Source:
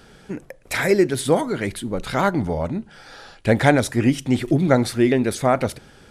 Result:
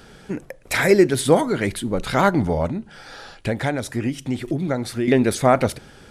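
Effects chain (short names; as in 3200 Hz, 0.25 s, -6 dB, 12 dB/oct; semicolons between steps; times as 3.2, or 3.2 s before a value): 2.66–5.08 compressor 2.5:1, threshold -27 dBFS, peak gain reduction 12 dB; gain +2.5 dB; AAC 192 kbps 48000 Hz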